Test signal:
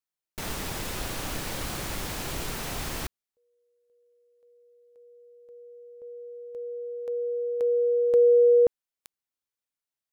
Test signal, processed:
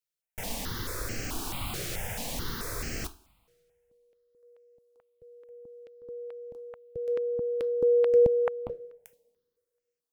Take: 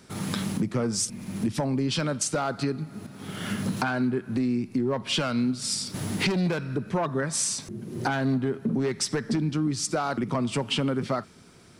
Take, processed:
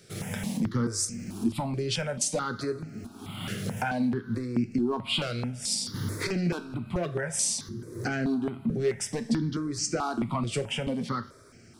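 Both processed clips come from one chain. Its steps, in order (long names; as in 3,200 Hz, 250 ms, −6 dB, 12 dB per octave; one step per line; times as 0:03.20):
coupled-rooms reverb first 0.31 s, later 1.8 s, from −22 dB, DRR 9 dB
step-sequenced phaser 4.6 Hz 250–3,600 Hz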